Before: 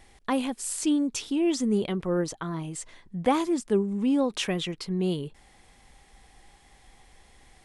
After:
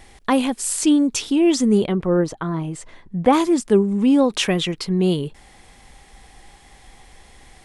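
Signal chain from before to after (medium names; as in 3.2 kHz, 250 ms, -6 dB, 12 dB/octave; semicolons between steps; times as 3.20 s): 1.85–3.33 s: treble shelf 2.6 kHz -10.5 dB; trim +8.5 dB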